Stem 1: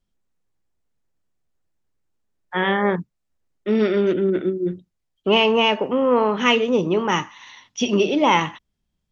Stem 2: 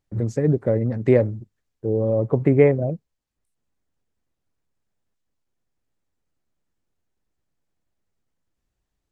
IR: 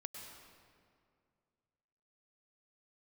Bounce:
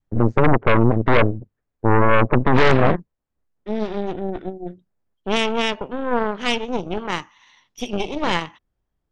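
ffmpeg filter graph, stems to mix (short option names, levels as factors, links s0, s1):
-filter_complex "[0:a]volume=0.224[s0];[1:a]lowpass=1600,alimiter=limit=0.316:level=0:latency=1:release=32,volume=0.891[s1];[s0][s1]amix=inputs=2:normalize=0,adynamicequalizer=threshold=0.0316:dfrequency=520:dqfactor=1.3:tfrequency=520:tqfactor=1.3:attack=5:release=100:ratio=0.375:range=1.5:mode=boostabove:tftype=bell,aeval=exprs='0.422*(cos(1*acos(clip(val(0)/0.422,-1,1)))-cos(1*PI/2))+0.0335*(cos(5*acos(clip(val(0)/0.422,-1,1)))-cos(5*PI/2))+0.188*(cos(8*acos(clip(val(0)/0.422,-1,1)))-cos(8*PI/2))':c=same"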